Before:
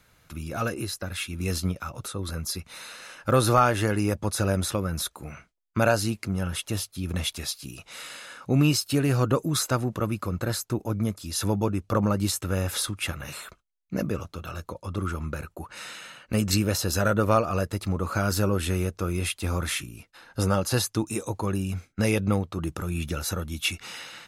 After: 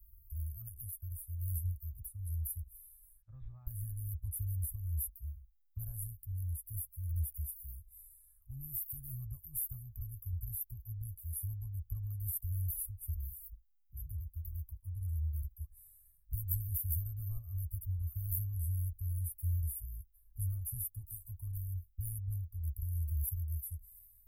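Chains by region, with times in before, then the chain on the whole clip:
3.22–3.67 s: high-pass 150 Hz 24 dB/octave + careless resampling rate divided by 6×, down none, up filtered
whole clip: inverse Chebyshev band-stop 190–6300 Hz, stop band 60 dB; peaking EQ 1.4 kHz -12.5 dB 0.25 oct; trim +12 dB

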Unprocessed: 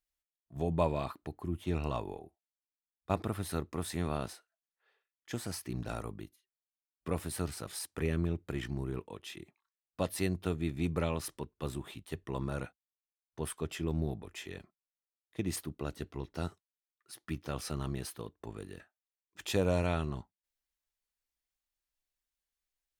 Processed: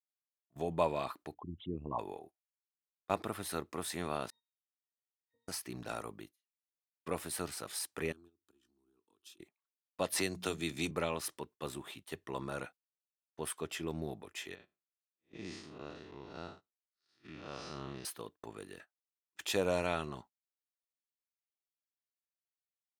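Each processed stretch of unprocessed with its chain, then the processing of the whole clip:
1.34–1.99 s: resonances exaggerated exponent 3 + careless resampling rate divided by 6×, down none, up filtered
4.30–5.48 s: ring modulator 160 Hz + pitch-class resonator A#, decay 0.58 s
8.12–9.39 s: peaking EQ 770 Hz -14.5 dB 0.81 oct + compression, threshold -47 dBFS + static phaser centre 550 Hz, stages 6
10.12–10.91 s: peaking EQ 6.2 kHz +8 dB 1.3 oct + hum notches 60/120/180/240 Hz + three bands compressed up and down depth 70%
14.55–18.05 s: spectral blur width 164 ms + low-pass 5.7 kHz 24 dB/octave
whole clip: high-pass 460 Hz 6 dB/octave; gate -56 dBFS, range -15 dB; trim +1.5 dB

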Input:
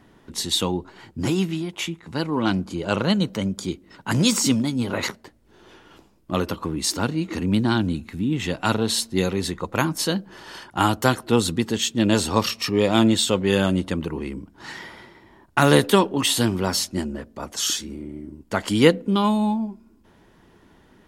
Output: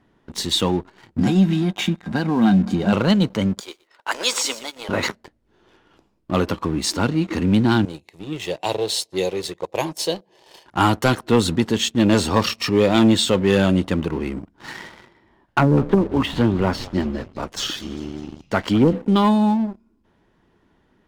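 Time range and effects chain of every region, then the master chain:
1.18–2.93 s: compression 5:1, threshold -23 dBFS + small resonant body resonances 210/740/1600/3700 Hz, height 16 dB, ringing for 85 ms
3.60–4.89 s: high-pass 500 Hz 24 dB/octave + bit-crushed delay 120 ms, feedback 35%, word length 7-bit, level -12.5 dB
7.85–10.66 s: high-pass 190 Hz + static phaser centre 570 Hz, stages 4
14.88–18.93 s: low-pass that closes with the level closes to 320 Hz, closed at -12 dBFS + frequency-shifting echo 200 ms, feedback 64%, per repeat -120 Hz, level -18 dB
whole clip: treble shelf 7.1 kHz -11 dB; waveshaping leveller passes 2; trim -3 dB

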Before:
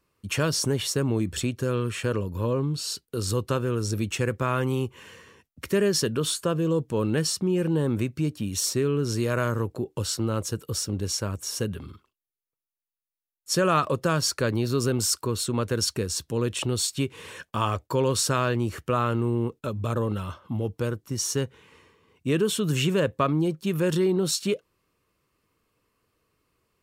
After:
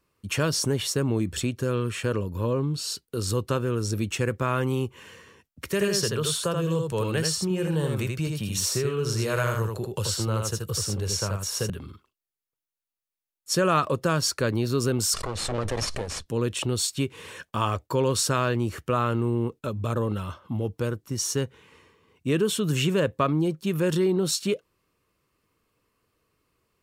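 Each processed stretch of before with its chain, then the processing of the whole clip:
5.71–11.70 s: peaking EQ 270 Hz -13.5 dB 0.58 oct + delay 81 ms -4 dB + three bands compressed up and down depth 40%
15.14–16.26 s: comb filter that takes the minimum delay 1.7 ms + Bessel low-pass 7.3 kHz, order 6 + swell ahead of each attack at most 24 dB/s
whole clip: none

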